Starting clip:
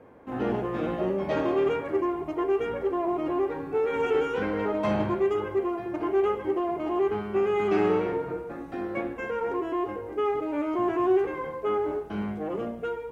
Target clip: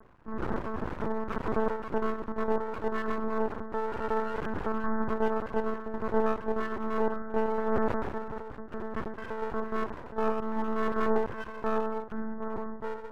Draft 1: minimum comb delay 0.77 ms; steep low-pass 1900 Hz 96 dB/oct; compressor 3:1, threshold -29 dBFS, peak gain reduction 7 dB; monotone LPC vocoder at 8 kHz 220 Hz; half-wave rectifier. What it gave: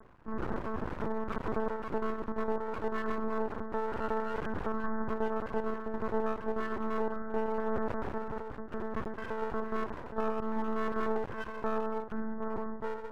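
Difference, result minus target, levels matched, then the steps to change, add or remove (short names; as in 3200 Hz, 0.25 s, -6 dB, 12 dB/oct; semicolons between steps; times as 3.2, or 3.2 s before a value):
compressor: peak gain reduction +7 dB
remove: compressor 3:1, threshold -29 dBFS, peak gain reduction 7 dB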